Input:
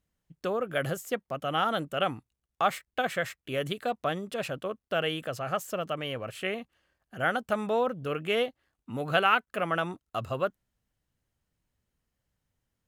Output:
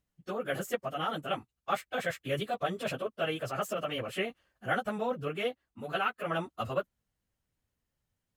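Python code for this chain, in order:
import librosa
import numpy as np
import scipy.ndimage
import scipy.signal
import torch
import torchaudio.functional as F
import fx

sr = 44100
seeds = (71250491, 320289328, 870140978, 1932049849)

y = fx.rider(x, sr, range_db=4, speed_s=0.5)
y = fx.stretch_vocoder_free(y, sr, factor=0.65)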